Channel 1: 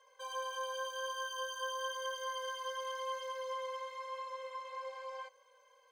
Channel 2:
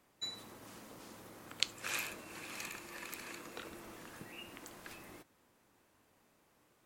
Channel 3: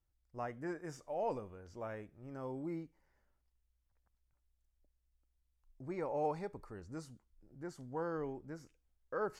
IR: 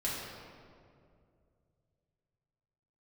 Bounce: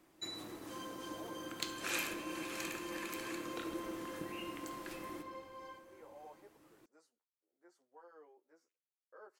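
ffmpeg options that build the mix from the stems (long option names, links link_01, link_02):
-filter_complex "[0:a]alimiter=level_in=12.5dB:limit=-24dB:level=0:latency=1,volume=-12.5dB,tremolo=f=3.3:d=0.45,adelay=500,volume=-6dB,asplit=2[link_01][link_02];[link_02]volume=-12.5dB[link_03];[1:a]equalizer=frequency=320:width_type=o:width=0.42:gain=10.5,asoftclip=type=tanh:threshold=-24dB,volume=-1.5dB,asplit=2[link_04][link_05];[link_05]volume=-8.5dB[link_06];[2:a]highpass=frequency=390:width=0.5412,highpass=frequency=390:width=1.3066,asplit=2[link_07][link_08];[link_08]adelay=10.8,afreqshift=0.86[link_09];[link_07][link_09]amix=inputs=2:normalize=1,volume=-14dB[link_10];[3:a]atrim=start_sample=2205[link_11];[link_03][link_06]amix=inputs=2:normalize=0[link_12];[link_12][link_11]afir=irnorm=-1:irlink=0[link_13];[link_01][link_04][link_10][link_13]amix=inputs=4:normalize=0"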